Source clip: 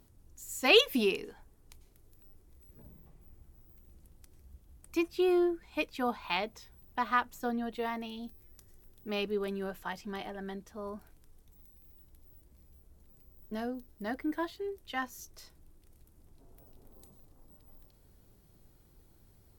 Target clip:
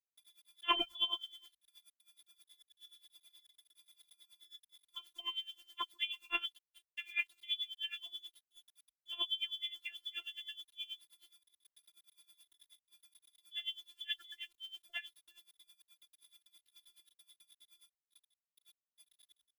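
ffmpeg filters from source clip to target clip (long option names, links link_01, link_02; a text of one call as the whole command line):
ffmpeg -i in.wav -filter_complex "[0:a]asplit=2[link_01][link_02];[link_02]adelay=338.2,volume=-19dB,highshelf=frequency=4000:gain=-7.61[link_03];[link_01][link_03]amix=inputs=2:normalize=0,asettb=1/sr,asplit=3[link_04][link_05][link_06];[link_04]atrim=end=6.584[link_07];[link_05]atrim=start=6.58:end=9.13,asetpts=PTS-STARTPTS,afade=type=in:duration=0.004:curve=qsin,afade=type=out:start_time=2.546:duration=0.004:curve=qsin,flanger=delay=19.5:depth=7.1:speed=2.3[link_08];[link_06]atrim=start=9.126[link_09];[link_07][link_08]acrossfade=duration=0.004:curve1=hsin:curve2=qsin[link_10];[link_10][link_09]acrossfade=duration=0.004:curve1=qsin:curve2=hsin,lowshelf=frequency=480:gain=4,flanger=delay=6.6:depth=6.9:regen=27:speed=1:shape=triangular,afftdn=noise_reduction=22:noise_floor=-44,lowpass=frequency=3100:width_type=q:width=0.5098,lowpass=frequency=3100:width_type=q:width=0.6013,lowpass=frequency=3100:width_type=q:width=0.9,lowpass=frequency=3100:width_type=q:width=2.563,afreqshift=-3600,acrusher=bits=9:mix=0:aa=0.000001,equalizer=frequency=780:width_type=o:width=0.8:gain=-7,afftfilt=real='hypot(re,im)*cos(PI*b)':imag='0':win_size=512:overlap=0.75,bandreject=frequency=50:width_type=h:width=6,bandreject=frequency=100:width_type=h:width=6,bandreject=frequency=150:width_type=h:width=6,aeval=exprs='val(0)*pow(10,-20*(0.5-0.5*cos(2*PI*9.4*n/s))/20)':channel_layout=same,volume=5.5dB" out.wav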